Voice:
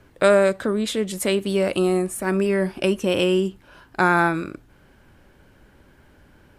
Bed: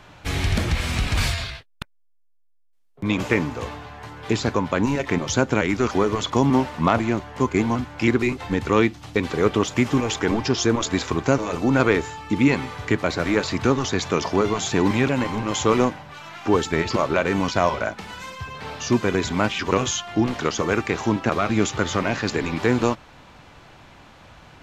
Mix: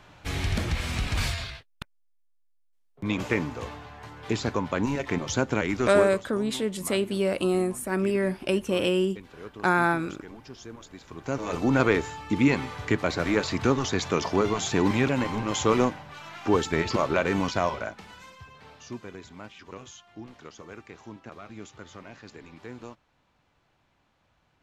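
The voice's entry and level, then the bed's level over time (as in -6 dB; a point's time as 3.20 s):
5.65 s, -4.5 dB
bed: 5.99 s -5.5 dB
6.25 s -23 dB
11.03 s -23 dB
11.50 s -3.5 dB
17.37 s -3.5 dB
19.30 s -22 dB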